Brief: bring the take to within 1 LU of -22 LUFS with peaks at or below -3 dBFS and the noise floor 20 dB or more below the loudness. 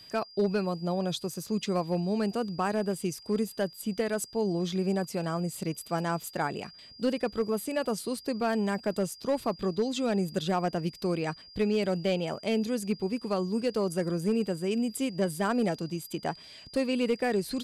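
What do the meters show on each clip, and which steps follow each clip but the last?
clipped samples 0.6%; clipping level -19.5 dBFS; steady tone 4.8 kHz; tone level -49 dBFS; loudness -30.5 LUFS; peak level -19.5 dBFS; loudness target -22.0 LUFS
-> clip repair -19.5 dBFS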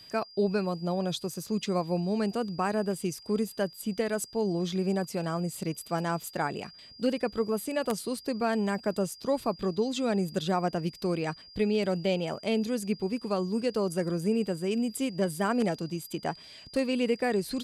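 clipped samples 0.0%; steady tone 4.8 kHz; tone level -49 dBFS
-> band-stop 4.8 kHz, Q 30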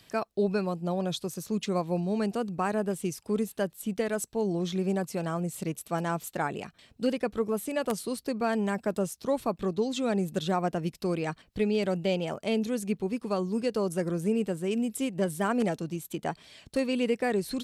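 steady tone not found; loudness -30.5 LUFS; peak level -10.5 dBFS; loudness target -22.0 LUFS
-> trim +8.5 dB; peak limiter -3 dBFS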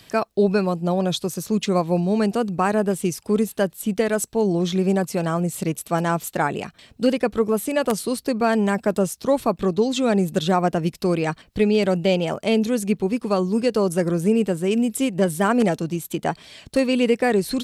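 loudness -22.0 LUFS; peak level -3.0 dBFS; noise floor -53 dBFS

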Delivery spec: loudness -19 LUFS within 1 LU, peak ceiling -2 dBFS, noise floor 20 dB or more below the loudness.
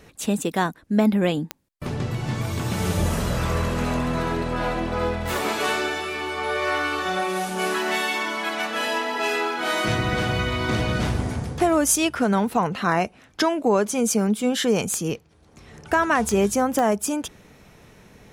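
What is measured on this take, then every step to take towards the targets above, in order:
clicks found 4; loudness -23.5 LUFS; peak level -7.0 dBFS; loudness target -19.0 LUFS
-> de-click; trim +4.5 dB

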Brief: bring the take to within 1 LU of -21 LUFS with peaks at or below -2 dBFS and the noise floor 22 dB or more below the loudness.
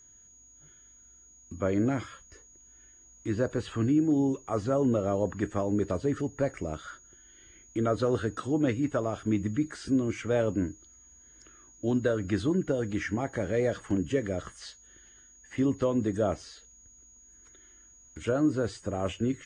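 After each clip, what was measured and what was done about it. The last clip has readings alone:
steady tone 6.7 kHz; tone level -54 dBFS; loudness -29.5 LUFS; peak level -15.5 dBFS; loudness target -21.0 LUFS
-> band-stop 6.7 kHz, Q 30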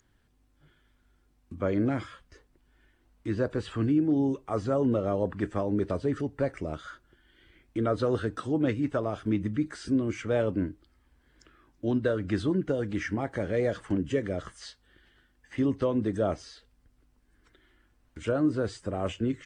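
steady tone not found; loudness -29.5 LUFS; peak level -15.5 dBFS; loudness target -21.0 LUFS
-> trim +8.5 dB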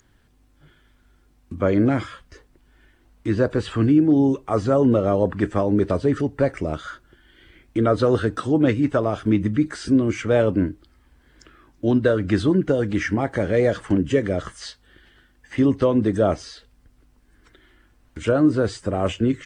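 loudness -21.0 LUFS; peak level -7.0 dBFS; noise floor -59 dBFS

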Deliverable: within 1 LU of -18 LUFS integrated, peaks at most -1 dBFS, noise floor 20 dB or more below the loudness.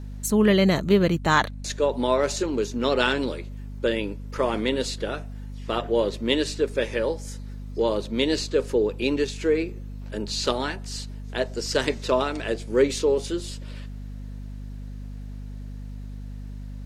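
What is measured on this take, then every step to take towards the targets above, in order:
hum 50 Hz; highest harmonic 250 Hz; hum level -33 dBFS; loudness -24.5 LUFS; peak level -6.0 dBFS; loudness target -18.0 LUFS
-> de-hum 50 Hz, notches 5; trim +6.5 dB; peak limiter -1 dBFS

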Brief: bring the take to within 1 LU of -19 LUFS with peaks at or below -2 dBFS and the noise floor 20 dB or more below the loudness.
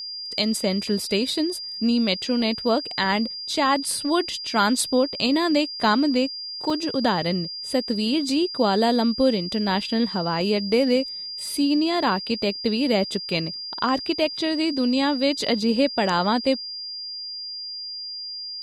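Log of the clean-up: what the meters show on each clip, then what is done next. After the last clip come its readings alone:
dropouts 2; longest dropout 2.8 ms; steady tone 4.8 kHz; tone level -31 dBFS; loudness -23.0 LUFS; peak level -8.5 dBFS; loudness target -19.0 LUFS
-> interpolate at 6.70/9.81 s, 2.8 ms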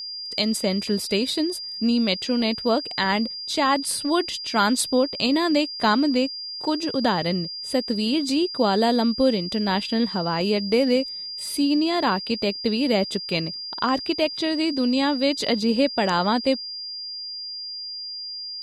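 dropouts 0; steady tone 4.8 kHz; tone level -31 dBFS
-> band-stop 4.8 kHz, Q 30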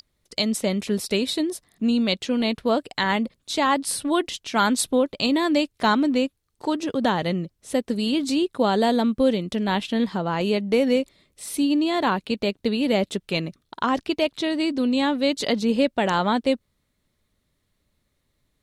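steady tone not found; loudness -23.5 LUFS; peak level -9.0 dBFS; loudness target -19.0 LUFS
-> trim +4.5 dB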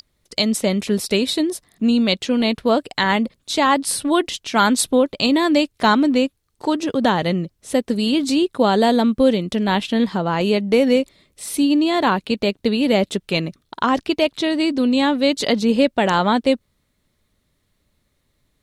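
loudness -19.0 LUFS; peak level -4.5 dBFS; noise floor -69 dBFS

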